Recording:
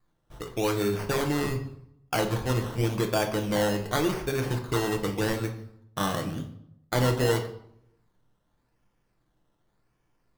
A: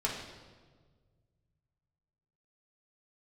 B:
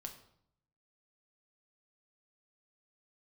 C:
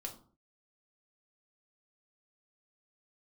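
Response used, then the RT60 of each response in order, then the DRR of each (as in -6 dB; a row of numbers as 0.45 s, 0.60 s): B; 1.5 s, 0.70 s, 0.45 s; -3.5 dB, 3.0 dB, 1.0 dB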